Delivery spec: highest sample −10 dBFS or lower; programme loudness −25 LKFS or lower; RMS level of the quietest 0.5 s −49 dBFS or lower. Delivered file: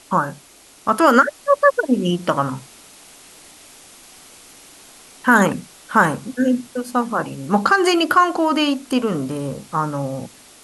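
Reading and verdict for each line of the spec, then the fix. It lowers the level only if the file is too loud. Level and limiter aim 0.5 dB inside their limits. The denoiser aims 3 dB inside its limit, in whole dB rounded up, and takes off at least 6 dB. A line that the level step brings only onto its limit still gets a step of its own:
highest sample −3.5 dBFS: out of spec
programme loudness −18.5 LKFS: out of spec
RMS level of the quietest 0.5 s −47 dBFS: out of spec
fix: level −7 dB

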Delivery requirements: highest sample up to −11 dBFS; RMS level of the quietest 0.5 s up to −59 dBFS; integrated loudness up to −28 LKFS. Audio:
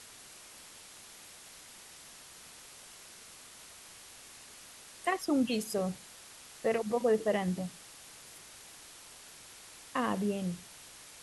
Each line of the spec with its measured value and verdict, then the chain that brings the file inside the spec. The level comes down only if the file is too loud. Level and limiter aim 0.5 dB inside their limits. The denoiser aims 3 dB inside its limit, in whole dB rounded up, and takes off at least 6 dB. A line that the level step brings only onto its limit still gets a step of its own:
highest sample −18.0 dBFS: in spec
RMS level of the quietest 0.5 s −52 dBFS: out of spec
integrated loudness −33.0 LKFS: in spec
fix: broadband denoise 10 dB, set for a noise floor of −52 dBFS

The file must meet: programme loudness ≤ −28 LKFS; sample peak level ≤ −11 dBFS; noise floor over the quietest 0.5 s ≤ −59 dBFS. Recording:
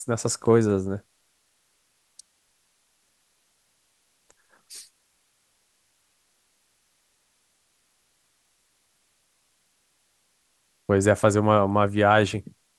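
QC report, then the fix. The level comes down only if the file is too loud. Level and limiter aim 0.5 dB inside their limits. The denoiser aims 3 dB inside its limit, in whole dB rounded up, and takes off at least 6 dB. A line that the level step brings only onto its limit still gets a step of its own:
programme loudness −22.0 LKFS: out of spec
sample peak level −4.0 dBFS: out of spec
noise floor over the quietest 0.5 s −69 dBFS: in spec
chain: level −6.5 dB
brickwall limiter −11.5 dBFS

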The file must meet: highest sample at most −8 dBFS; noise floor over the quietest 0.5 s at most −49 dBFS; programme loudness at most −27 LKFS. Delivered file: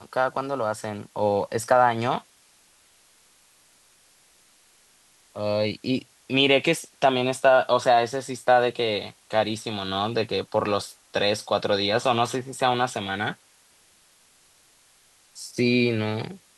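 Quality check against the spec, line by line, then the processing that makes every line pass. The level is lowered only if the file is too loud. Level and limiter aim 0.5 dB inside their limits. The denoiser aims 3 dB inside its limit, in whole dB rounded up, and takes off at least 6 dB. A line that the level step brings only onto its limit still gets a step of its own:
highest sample −6.0 dBFS: out of spec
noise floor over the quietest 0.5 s −59 dBFS: in spec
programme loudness −24.0 LKFS: out of spec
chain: level −3.5 dB

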